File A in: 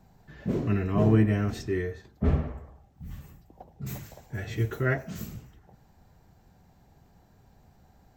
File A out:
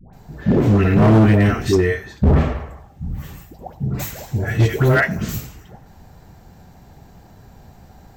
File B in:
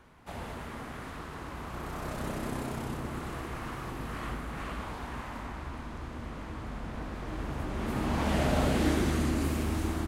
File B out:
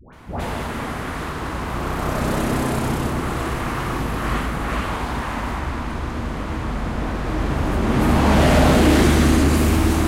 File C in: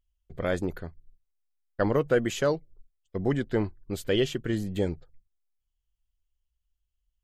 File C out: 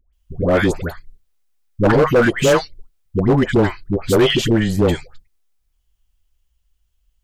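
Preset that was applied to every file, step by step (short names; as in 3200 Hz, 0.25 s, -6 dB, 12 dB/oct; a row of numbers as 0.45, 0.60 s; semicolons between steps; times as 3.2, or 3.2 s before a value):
dispersion highs, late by 0.131 s, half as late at 870 Hz; overloaded stage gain 23 dB; normalise peaks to -9 dBFS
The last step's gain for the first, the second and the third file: +14.0, +14.0, +14.0 dB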